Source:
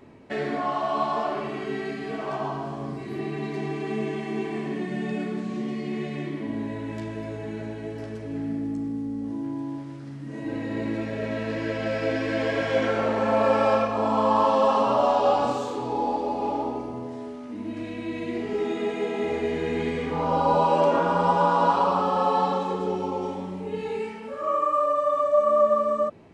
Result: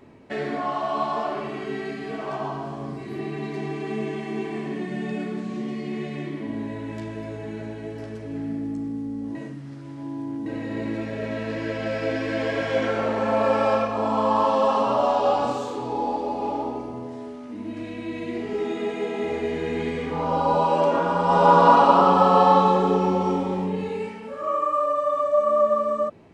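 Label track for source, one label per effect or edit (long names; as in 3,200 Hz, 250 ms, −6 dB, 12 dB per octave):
9.350000	10.460000	reverse
21.260000	23.620000	thrown reverb, RT60 1.5 s, DRR −5.5 dB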